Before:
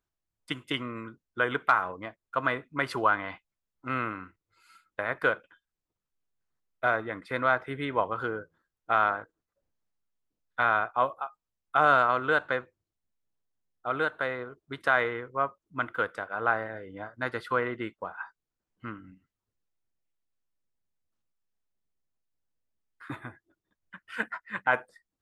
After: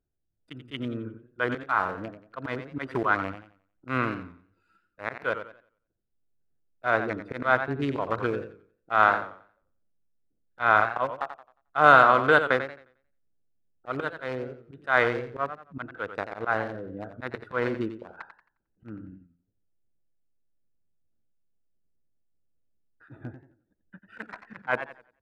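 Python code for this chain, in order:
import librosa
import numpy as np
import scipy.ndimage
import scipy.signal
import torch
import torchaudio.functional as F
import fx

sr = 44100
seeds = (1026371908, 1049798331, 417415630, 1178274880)

y = fx.wiener(x, sr, points=41)
y = fx.auto_swell(y, sr, attack_ms=124.0)
y = fx.echo_warbled(y, sr, ms=89, feedback_pct=31, rate_hz=2.8, cents=125, wet_db=-10.0)
y = F.gain(torch.from_numpy(y), 6.5).numpy()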